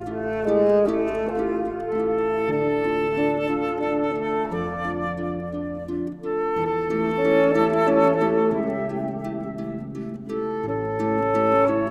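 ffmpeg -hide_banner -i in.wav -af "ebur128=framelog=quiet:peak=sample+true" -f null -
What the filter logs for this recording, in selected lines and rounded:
Integrated loudness:
  I:         -23.2 LUFS
  Threshold: -33.2 LUFS
Loudness range:
  LRA:         4.9 LU
  Threshold: -43.4 LUFS
  LRA low:   -26.2 LUFS
  LRA high:  -21.3 LUFS
Sample peak:
  Peak:       -6.4 dBFS
True peak:
  Peak:       -6.4 dBFS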